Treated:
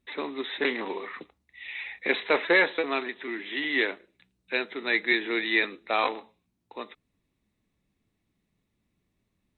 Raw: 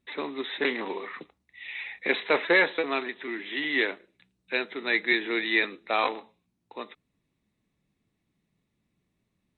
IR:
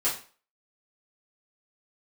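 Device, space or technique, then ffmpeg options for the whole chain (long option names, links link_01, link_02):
low shelf boost with a cut just above: -af "lowshelf=frequency=83:gain=6,equalizer=frequency=150:width_type=o:width=0.59:gain=-4.5"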